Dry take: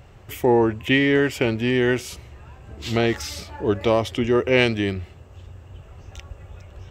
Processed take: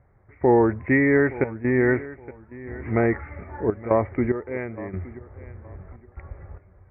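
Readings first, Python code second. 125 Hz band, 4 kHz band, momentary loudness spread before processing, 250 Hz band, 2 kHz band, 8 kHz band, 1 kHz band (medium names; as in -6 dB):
-1.5 dB, under -40 dB, 17 LU, -1.0 dB, -2.5 dB, under -40 dB, -0.5 dB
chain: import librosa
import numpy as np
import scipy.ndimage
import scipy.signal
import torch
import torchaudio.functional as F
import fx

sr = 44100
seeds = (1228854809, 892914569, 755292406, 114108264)

y = scipy.signal.sosfilt(scipy.signal.butter(16, 2200.0, 'lowpass', fs=sr, output='sos'), x)
y = fx.step_gate(y, sr, bpm=73, pattern='..xxxxx.xx.', floor_db=-12.0, edge_ms=4.5)
y = fx.echo_feedback(y, sr, ms=869, feedback_pct=25, wet_db=-18.0)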